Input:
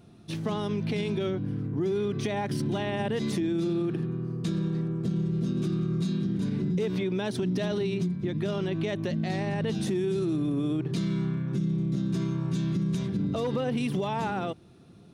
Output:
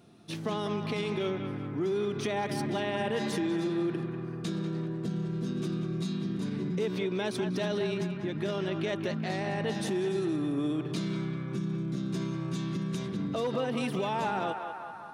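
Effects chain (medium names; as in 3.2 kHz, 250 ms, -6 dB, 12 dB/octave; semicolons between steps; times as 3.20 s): high-pass 260 Hz 6 dB/octave; band-passed feedback delay 194 ms, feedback 75%, band-pass 1.2 kHz, level -5 dB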